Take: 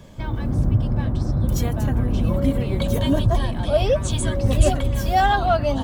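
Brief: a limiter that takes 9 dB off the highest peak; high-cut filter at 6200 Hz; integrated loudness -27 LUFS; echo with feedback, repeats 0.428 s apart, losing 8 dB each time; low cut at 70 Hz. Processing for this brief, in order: HPF 70 Hz; LPF 6200 Hz; limiter -15.5 dBFS; feedback echo 0.428 s, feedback 40%, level -8 dB; gain -3 dB

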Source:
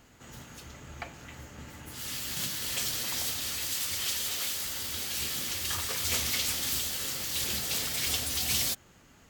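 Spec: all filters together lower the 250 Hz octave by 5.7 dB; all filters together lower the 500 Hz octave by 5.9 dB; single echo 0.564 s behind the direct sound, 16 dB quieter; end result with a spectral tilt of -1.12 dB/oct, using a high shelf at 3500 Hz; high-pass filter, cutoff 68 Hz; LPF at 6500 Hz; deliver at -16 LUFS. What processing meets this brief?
HPF 68 Hz; LPF 6500 Hz; bell 250 Hz -6 dB; bell 500 Hz -6 dB; high shelf 3500 Hz +5 dB; echo 0.564 s -16 dB; gain +14 dB

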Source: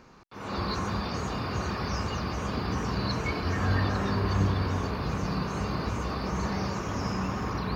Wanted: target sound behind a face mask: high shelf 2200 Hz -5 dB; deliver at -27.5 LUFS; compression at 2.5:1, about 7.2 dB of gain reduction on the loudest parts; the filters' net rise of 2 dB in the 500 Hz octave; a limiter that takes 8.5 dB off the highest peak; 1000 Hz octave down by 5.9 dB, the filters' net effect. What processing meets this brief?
bell 500 Hz +4.5 dB; bell 1000 Hz -7.5 dB; compressor 2.5:1, threshold -32 dBFS; limiter -29.5 dBFS; high shelf 2200 Hz -5 dB; gain +11.5 dB

